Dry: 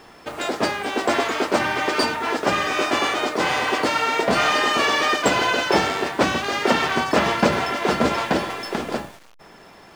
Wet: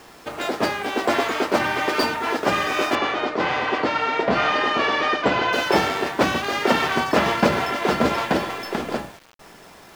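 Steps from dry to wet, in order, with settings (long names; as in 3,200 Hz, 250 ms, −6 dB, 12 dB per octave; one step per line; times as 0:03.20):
running median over 5 samples
bit reduction 8 bits
0:02.95–0:05.53: high-frequency loss of the air 150 metres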